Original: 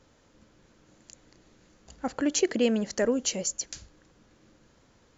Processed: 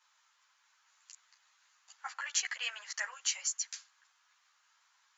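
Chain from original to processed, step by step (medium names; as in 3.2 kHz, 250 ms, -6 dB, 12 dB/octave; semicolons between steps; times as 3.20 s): dynamic bell 1.9 kHz, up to +5 dB, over -49 dBFS, Q 1.6; steep high-pass 950 Hz 36 dB/octave; three-phase chorus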